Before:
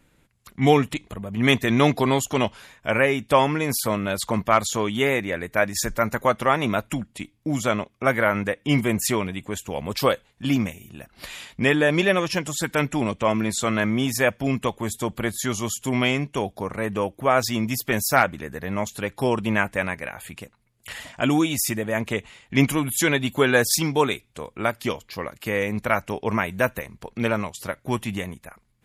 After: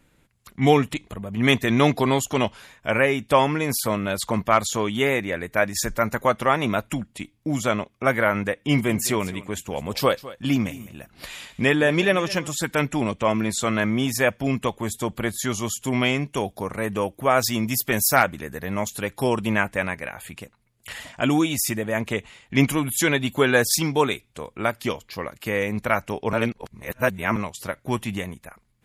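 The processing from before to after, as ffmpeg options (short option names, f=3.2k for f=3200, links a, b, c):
-filter_complex "[0:a]asettb=1/sr,asplit=3[a][b][c];[a]atrim=end=8.524[d];[b]atrim=start=8.52:end=12.55,asetpts=PTS-STARTPTS,afade=t=in:d=0.004:c=qsin,afade=t=out:st=4.026:d=0.004:c=qsin,aecho=1:1:206:0.133,atrim=end_sample=177723[e];[c]atrim=start=12.546[f];[d][e]acrossfade=d=0.004:c1=hsin:c2=qsin[g];[g][f]acrossfade=d=0.004:c1=qsin:c2=hsin,asettb=1/sr,asplit=3[h][i][j];[h]atrim=end=16.264[k];[i]atrim=start=16.26:end=19.54,asetpts=PTS-STARTPTS,afade=t=in:d=0.004:c=qsin,afade=t=out:st=3.276:d=0.004:c=qsin,highshelf=f=7.3k:g=7.5[l];[j]atrim=start=19.536[m];[k][l]acrossfade=d=0.004:c1=hsin:c2=qsin[n];[n][m]acrossfade=d=0.004:c1=qsin:c2=hsin,asplit=3[o][p][q];[o]atrim=end=26.332[r];[p]atrim=start=26.328:end=27.362,asetpts=PTS-STARTPTS,areverse[s];[q]atrim=start=27.358[t];[r][s]acrossfade=d=0.004:c1=hsin:c2=hsin[u];[u][t]acrossfade=d=0.004:c1=hsin:c2=hsin"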